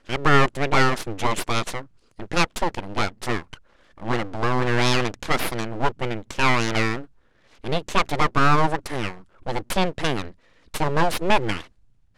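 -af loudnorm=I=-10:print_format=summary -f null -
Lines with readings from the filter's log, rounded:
Input Integrated:    -23.9 LUFS
Input True Peak:      -3.5 dBTP
Input LRA:             3.0 LU
Input Threshold:     -34.7 LUFS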